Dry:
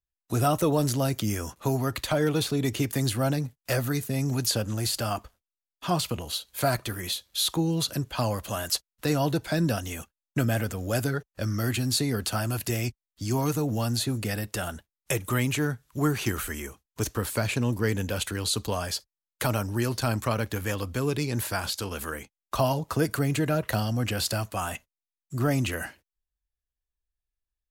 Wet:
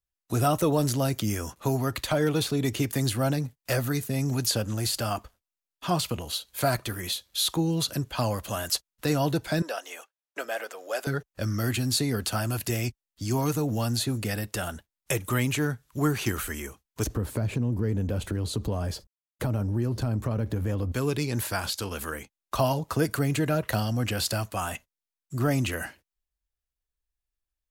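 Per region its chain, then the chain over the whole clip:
9.62–11.07 s: high-pass 470 Hz 24 dB/octave + treble shelf 6.3 kHz -10 dB
17.06–20.92 s: companding laws mixed up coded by mu + tilt shelf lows +9.5 dB, about 780 Hz + compression 2.5:1, threshold -27 dBFS
whole clip: none

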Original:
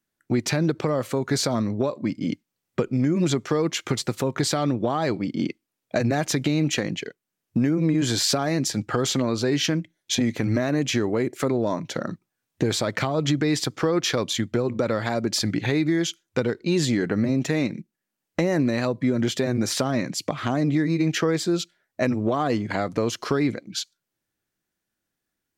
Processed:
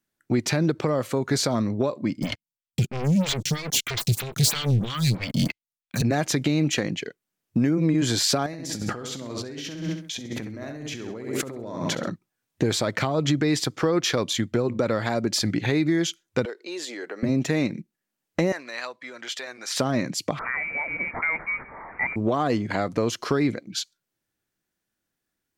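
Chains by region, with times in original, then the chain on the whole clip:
2.22–6.02 s: Chebyshev band-stop 120–2900 Hz + waveshaping leveller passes 5 + lamp-driven phase shifter 3.1 Hz
8.46–12.10 s: feedback delay 67 ms, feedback 40%, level -5.5 dB + compressor with a negative ratio -33 dBFS
16.45–17.23 s: high-pass 390 Hz 24 dB/octave + compression 1.5:1, threshold -41 dBFS
18.52–19.76 s: high-pass 1.1 kHz + treble shelf 8.9 kHz -10 dB
20.39–22.16 s: one-bit delta coder 32 kbps, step -32.5 dBFS + high-pass 450 Hz + frequency inversion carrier 2.6 kHz
whole clip: none

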